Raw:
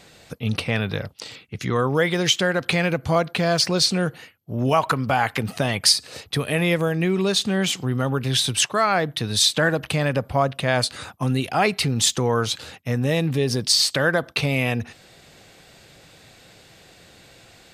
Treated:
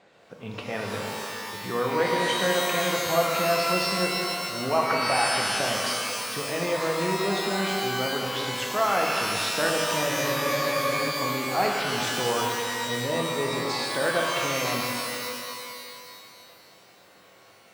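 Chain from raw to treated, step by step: band-pass 730 Hz, Q 0.66; spectral freeze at 10.11, 0.98 s; shimmer reverb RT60 2.3 s, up +12 st, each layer -2 dB, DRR 0 dB; gain -5 dB

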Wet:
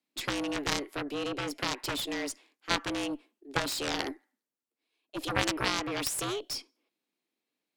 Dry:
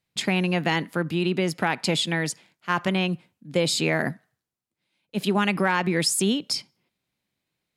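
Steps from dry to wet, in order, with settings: frequency shift +130 Hz; added harmonics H 3 -6 dB, 4 -16 dB, 6 -19 dB, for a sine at -10 dBFS

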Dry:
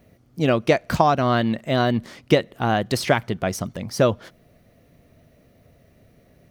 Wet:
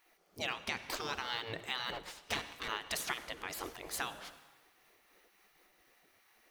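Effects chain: 1.92–2.68 minimum comb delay 5.5 ms; de-hum 115.2 Hz, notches 4; spectral gate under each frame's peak -15 dB weak; compressor 3:1, threshold -34 dBFS, peak gain reduction 9.5 dB; 3.33–3.87 transient shaper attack -3 dB, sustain +7 dB; reverb RT60 1.6 s, pre-delay 53 ms, DRR 13.5 dB; noise-modulated level, depth 50%; gain +1 dB

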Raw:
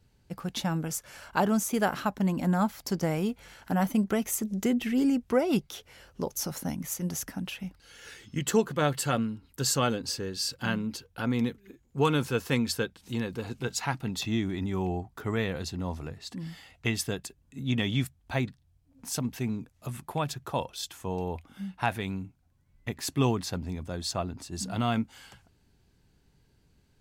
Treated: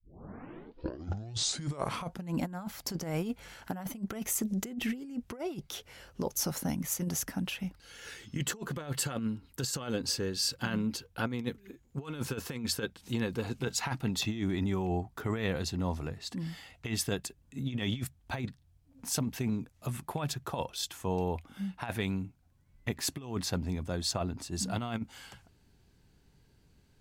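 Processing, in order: tape start at the beginning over 2.41 s; negative-ratio compressor -30 dBFS, ratio -0.5; gain -2 dB

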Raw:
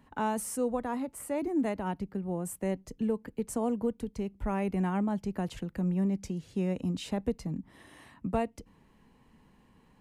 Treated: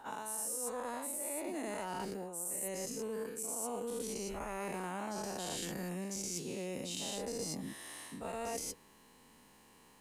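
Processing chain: spectral dilation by 0.24 s; tone controls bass -12 dB, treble +13 dB; reverse; compressor 10:1, threshold -34 dBFS, peak gain reduction 17 dB; reverse; gain -2.5 dB

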